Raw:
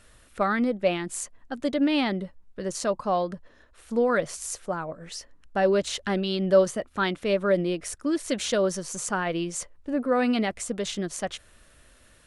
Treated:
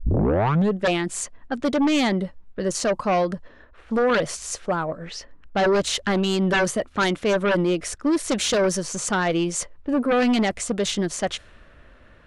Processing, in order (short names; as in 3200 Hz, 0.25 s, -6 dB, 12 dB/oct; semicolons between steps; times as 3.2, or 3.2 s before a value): tape start at the beginning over 0.81 s; sine folder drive 11 dB, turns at -8.5 dBFS; low-pass opened by the level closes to 1800 Hz, open at -12 dBFS; gain -7.5 dB